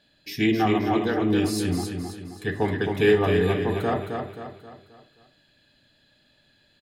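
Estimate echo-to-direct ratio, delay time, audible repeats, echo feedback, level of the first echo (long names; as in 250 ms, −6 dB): −4.5 dB, 265 ms, 5, 44%, −5.5 dB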